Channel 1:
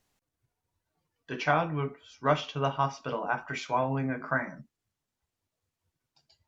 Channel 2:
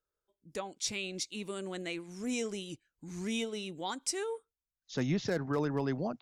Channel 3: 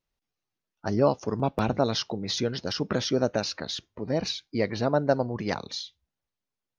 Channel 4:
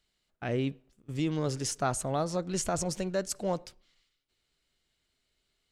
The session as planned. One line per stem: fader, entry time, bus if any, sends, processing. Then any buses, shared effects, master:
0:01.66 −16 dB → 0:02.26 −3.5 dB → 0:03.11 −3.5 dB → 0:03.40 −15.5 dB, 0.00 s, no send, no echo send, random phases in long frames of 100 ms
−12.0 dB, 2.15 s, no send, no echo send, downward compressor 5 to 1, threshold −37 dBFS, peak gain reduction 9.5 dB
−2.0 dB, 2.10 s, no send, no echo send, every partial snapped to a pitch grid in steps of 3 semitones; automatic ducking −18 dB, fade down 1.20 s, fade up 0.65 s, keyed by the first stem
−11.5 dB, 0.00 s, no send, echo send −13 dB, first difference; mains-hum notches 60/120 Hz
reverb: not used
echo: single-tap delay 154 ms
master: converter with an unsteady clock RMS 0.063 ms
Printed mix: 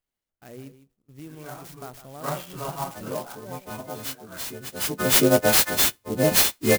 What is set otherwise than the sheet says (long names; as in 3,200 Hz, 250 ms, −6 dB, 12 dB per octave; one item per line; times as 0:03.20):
stem 2: muted
stem 3 −2.0 dB → +6.5 dB
stem 4: missing first difference